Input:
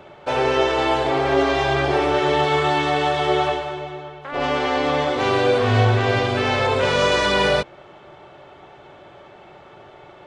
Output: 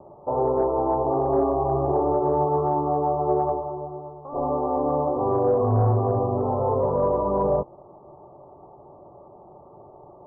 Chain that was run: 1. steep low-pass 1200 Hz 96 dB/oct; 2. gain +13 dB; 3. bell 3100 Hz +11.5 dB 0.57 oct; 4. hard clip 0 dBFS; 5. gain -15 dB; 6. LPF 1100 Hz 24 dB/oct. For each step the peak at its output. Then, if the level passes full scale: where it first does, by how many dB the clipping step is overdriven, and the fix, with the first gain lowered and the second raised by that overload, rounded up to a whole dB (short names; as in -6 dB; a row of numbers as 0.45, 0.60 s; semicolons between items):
-5.5, +7.5, +7.5, 0.0, -15.0, -13.5 dBFS; step 2, 7.5 dB; step 2 +5 dB, step 5 -7 dB